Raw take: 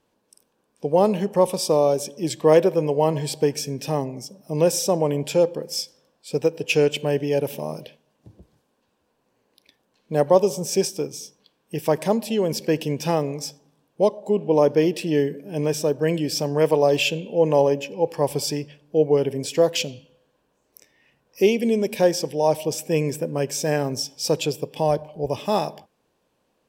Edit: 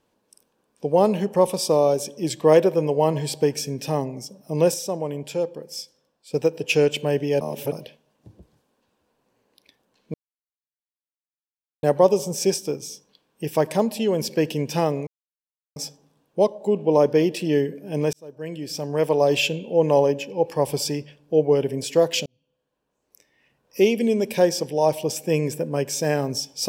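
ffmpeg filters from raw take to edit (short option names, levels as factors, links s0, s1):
-filter_complex "[0:a]asplit=9[s0][s1][s2][s3][s4][s5][s6][s7][s8];[s0]atrim=end=4.742[s9];[s1]atrim=start=4.738:end=6.342,asetpts=PTS-STARTPTS,volume=0.473[s10];[s2]atrim=start=6.338:end=7.412[s11];[s3]atrim=start=7.408:end=7.722,asetpts=PTS-STARTPTS,areverse[s12];[s4]atrim=start=7.718:end=10.14,asetpts=PTS-STARTPTS,afade=t=out:st=2.418:d=0.004:c=hsin,apad=pad_dur=1.69[s13];[s5]atrim=start=10.14:end=13.38,asetpts=PTS-STARTPTS,afade=t=in:d=0.004:c=hsin,afade=t=out:st=3.236:d=0.004:c=hsin,apad=pad_dur=0.69[s14];[s6]atrim=start=13.38:end=15.75,asetpts=PTS-STARTPTS,afade=t=in:d=0.004:c=hsin,afade=t=out:st=2.366:d=0.004:c=hsin[s15];[s7]atrim=start=15.75:end=19.88,asetpts=PTS-STARTPTS,afade=t=in:d=1.2,afade=t=out:st=4.126:d=0.004:c=hsin[s16];[s8]atrim=start=19.88,asetpts=PTS-STARTPTS,afade=t=in:d=1.61[s17];[s9][s10]acrossfade=d=0.004:c1=hsin:c2=hsin[s18];[s18][s11]acrossfade=d=0.004:c1=hsin:c2=hsin[s19];[s19][s12]acrossfade=d=0.004:c1=hsin:c2=hsin[s20];[s13][s14][s15][s16][s17]concat=n=5:v=0:a=1[s21];[s20][s21]acrossfade=d=0.004:c1=hsin:c2=hsin"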